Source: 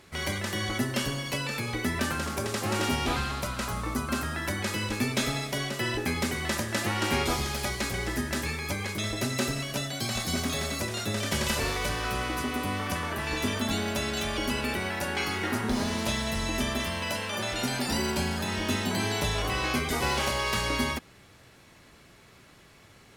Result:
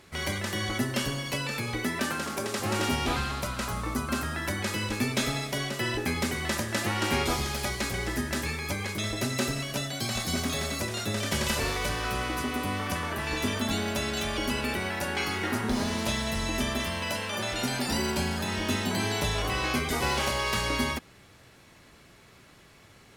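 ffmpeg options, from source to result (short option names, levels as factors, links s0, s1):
-filter_complex "[0:a]asettb=1/sr,asplit=3[s0][s1][s2];[s0]atrim=end=1.844[s3];[s1]atrim=start=1.84:end=2.6,asetpts=PTS-STARTPTS,afade=t=in:d=0.004:c=qsin,afade=t=out:st=0.756:d=0.004:c=qsin,highpass=160[s4];[s2]atrim=start=2.596[s5];[s3][s4]acrossfade=d=0.004:c1=hsin:c2=qsin[s6];[s6][s5]acrossfade=d=0.004:c1=qsin:c2=hsin"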